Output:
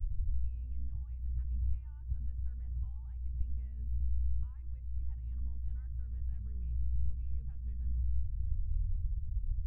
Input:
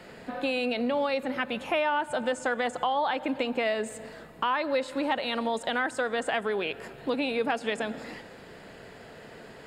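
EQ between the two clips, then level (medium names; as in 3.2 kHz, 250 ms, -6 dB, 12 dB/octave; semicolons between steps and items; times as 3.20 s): inverse Chebyshev band-stop 250–9100 Hz, stop band 60 dB; RIAA curve playback; +15.5 dB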